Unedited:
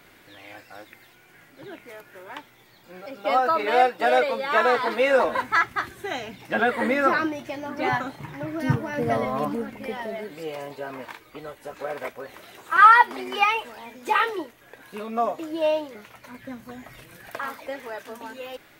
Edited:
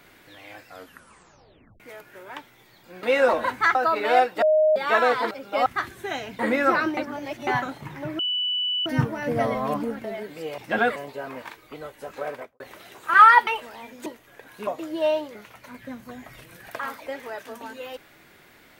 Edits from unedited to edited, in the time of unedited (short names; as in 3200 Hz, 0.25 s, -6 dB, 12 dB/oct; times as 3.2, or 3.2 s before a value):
0.68 tape stop 1.12 s
3.03–3.38 swap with 4.94–5.66
4.05–4.39 bleep 620 Hz -15 dBFS
6.39–6.77 move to 10.59
7.35–7.85 reverse
8.57 add tone 2970 Hz -22.5 dBFS 0.67 s
9.75–10.05 cut
11.9–12.23 studio fade out
13.1–13.5 cut
14.09–14.4 cut
15.01–15.27 cut